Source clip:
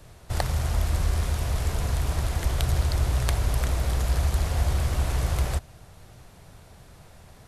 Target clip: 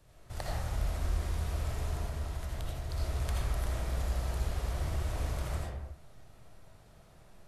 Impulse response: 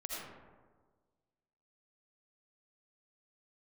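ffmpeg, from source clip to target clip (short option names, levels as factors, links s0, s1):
-filter_complex "[0:a]asettb=1/sr,asplit=3[s0][s1][s2];[s0]atrim=end=1.954[s3];[s1]atrim=start=1.95:end=2.9,asetpts=PTS-STARTPTS,afade=t=in:d=0.004:c=qsin,afade=t=out:st=0.946:d=0.004:c=qsin,acompressor=threshold=0.0562:ratio=6[s4];[s2]atrim=start=2.896[s5];[s3][s4]acrossfade=d=0.004:c1=hsin:c2=qsin[s6];[s6][s5]acrossfade=d=0.004:c1=qsin:c2=hsin[s7];[1:a]atrim=start_sample=2205,afade=t=out:st=0.42:d=0.01,atrim=end_sample=18963[s8];[s7][s8]afir=irnorm=-1:irlink=0,volume=0.355"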